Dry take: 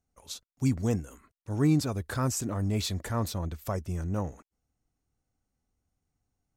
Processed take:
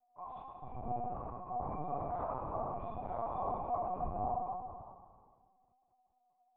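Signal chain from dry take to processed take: HPF 120 Hz 6 dB/oct; notches 50/100/150/200 Hz; dynamic EQ 300 Hz, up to -6 dB, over -41 dBFS, Q 3.1; in parallel at +0.5 dB: compressor 5:1, threshold -39 dBFS, peak gain reduction 13.5 dB; on the sum: limiter -26.5 dBFS, peak gain reduction 10 dB; vocal rider within 4 dB 0.5 s; vocal tract filter a; echo with dull and thin repeats by turns 0.14 s, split 910 Hz, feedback 53%, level -6 dB; reverb RT60 1.6 s, pre-delay 3 ms, DRR -13.5 dB; LPC vocoder at 8 kHz pitch kept; gain +1.5 dB

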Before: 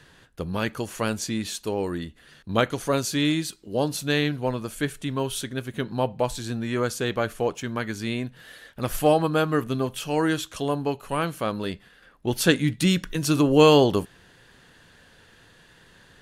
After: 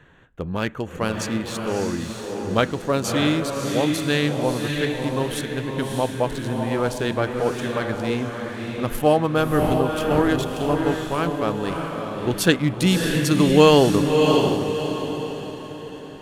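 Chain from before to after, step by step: Wiener smoothing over 9 samples; 9.49–10.28 wind noise 500 Hz -22 dBFS; diffused feedback echo 0.623 s, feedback 43%, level -3.5 dB; gain +2 dB

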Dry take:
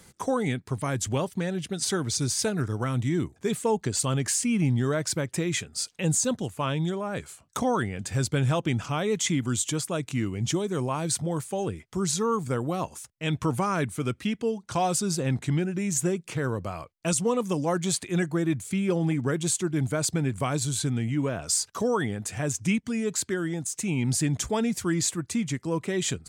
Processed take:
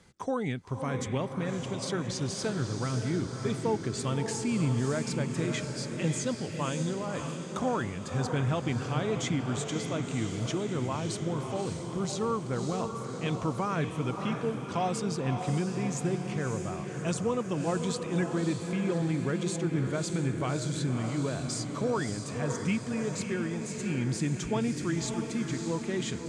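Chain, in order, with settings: air absorption 79 m; diffused feedback echo 0.589 s, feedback 59%, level -5.5 dB; gain -4.5 dB

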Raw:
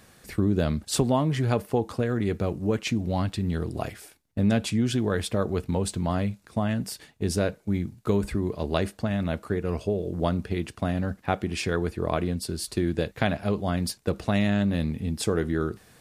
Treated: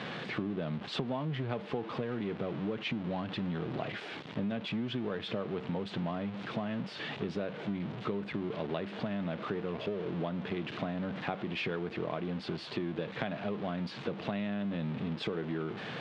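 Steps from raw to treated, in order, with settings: zero-crossing step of -28 dBFS; elliptic band-pass 140–3400 Hz, stop band 70 dB; compressor, threshold -28 dBFS, peak gain reduction 11 dB; gain -3.5 dB

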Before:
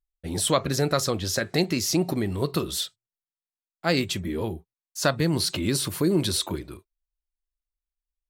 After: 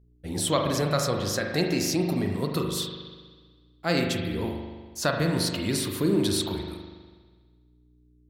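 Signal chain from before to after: buzz 60 Hz, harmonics 7, -55 dBFS -8 dB/oct; spring tank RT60 1.5 s, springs 40 ms, chirp 35 ms, DRR 2 dB; gain -3 dB

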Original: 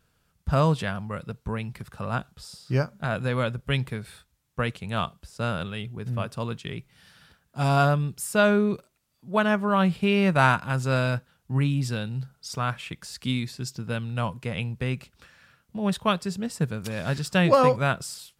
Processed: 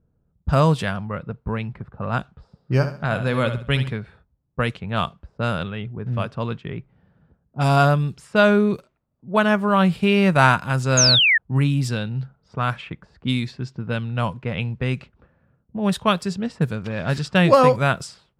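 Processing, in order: low-pass opened by the level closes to 430 Hz, open at -22 dBFS; 2.61–3.92 flutter echo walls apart 11.7 m, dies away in 0.4 s; 10.97–11.38 painted sound fall 1700–6900 Hz -20 dBFS; gain +4.5 dB

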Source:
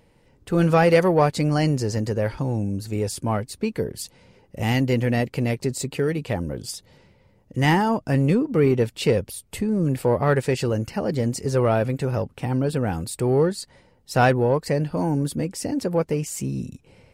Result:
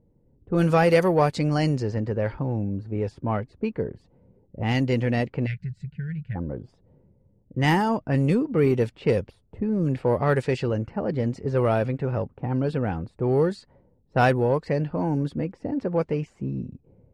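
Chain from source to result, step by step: spectral gain 5.46–6.36, 210–1400 Hz -28 dB; low-pass opened by the level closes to 370 Hz, open at -14.5 dBFS; gain -2 dB

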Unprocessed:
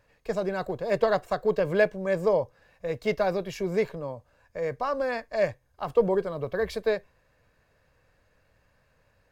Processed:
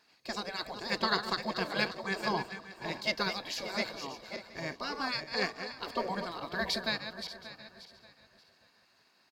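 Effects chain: regenerating reverse delay 0.291 s, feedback 52%, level -9.5 dB; spectral gate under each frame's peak -10 dB weak; HPF 79 Hz 6 dB/oct; bell 4500 Hz +13.5 dB 0.69 oct; echo 0.722 s -22 dB

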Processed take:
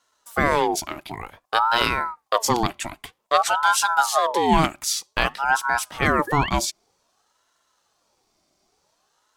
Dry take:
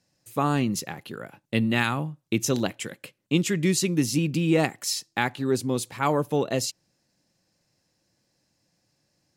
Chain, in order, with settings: painted sound rise, 6.27–6.5, 960–2800 Hz -33 dBFS; ring modulator with a swept carrier 840 Hz, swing 45%, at 0.53 Hz; gain +6.5 dB

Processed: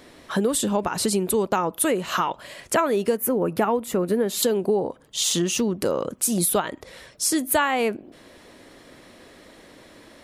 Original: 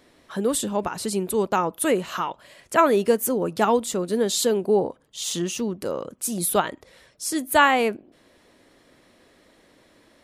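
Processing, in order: 3.17–4.43 band shelf 5300 Hz -10.5 dB; compressor 5:1, threshold -28 dBFS, peak gain reduction 15 dB; gain +8.5 dB

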